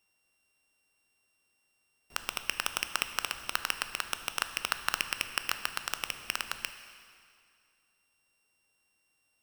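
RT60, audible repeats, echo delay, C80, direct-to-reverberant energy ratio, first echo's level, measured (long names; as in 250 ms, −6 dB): 2.3 s, no echo audible, no echo audible, 11.0 dB, 9.0 dB, no echo audible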